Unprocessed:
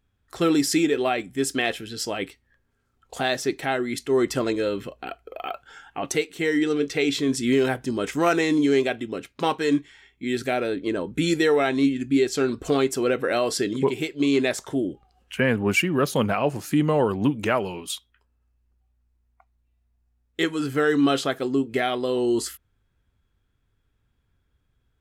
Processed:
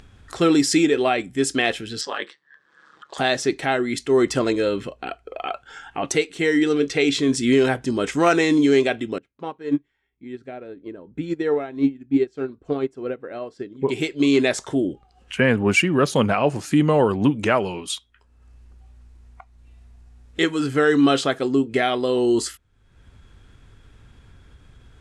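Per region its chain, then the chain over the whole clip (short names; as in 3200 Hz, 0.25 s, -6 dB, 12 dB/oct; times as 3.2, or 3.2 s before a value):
2.01–3.18 ring modulator 72 Hz + speaker cabinet 430–7100 Hz, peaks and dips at 660 Hz -5 dB, 1100 Hz +9 dB, 1700 Hz +10 dB, 2400 Hz -6 dB, 3600 Hz +5 dB, 6700 Hz -5 dB
9.18–13.89 LPF 1000 Hz 6 dB/oct + upward expander 2.5:1, over -29 dBFS
whole clip: LPF 9700 Hz 24 dB/oct; upward compressor, threshold -36 dBFS; gain +3.5 dB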